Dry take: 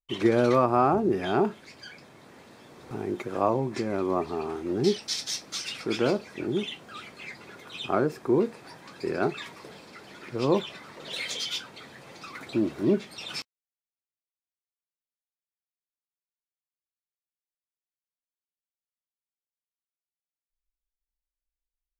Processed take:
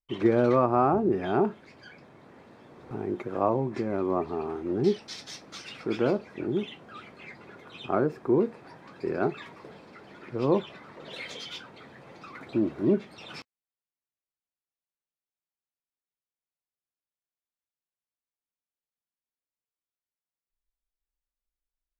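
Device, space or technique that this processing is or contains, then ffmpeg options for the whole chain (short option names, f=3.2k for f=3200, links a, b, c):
through cloth: -af "highshelf=f=3.5k:g=-16.5"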